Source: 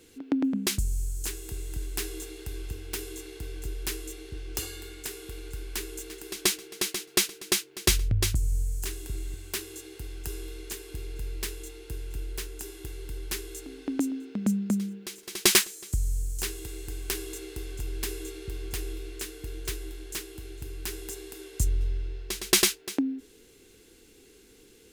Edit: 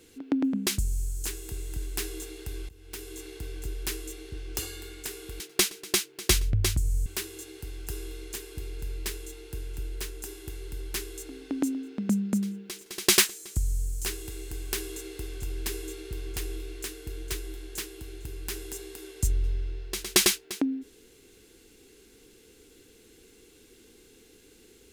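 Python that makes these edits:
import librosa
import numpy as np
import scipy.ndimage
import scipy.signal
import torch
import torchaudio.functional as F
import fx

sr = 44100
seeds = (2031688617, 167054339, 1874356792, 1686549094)

y = fx.edit(x, sr, fx.fade_in_from(start_s=2.69, length_s=0.56, floor_db=-21.5),
    fx.cut(start_s=5.4, length_s=1.58),
    fx.cut(start_s=8.64, length_s=0.79), tone=tone)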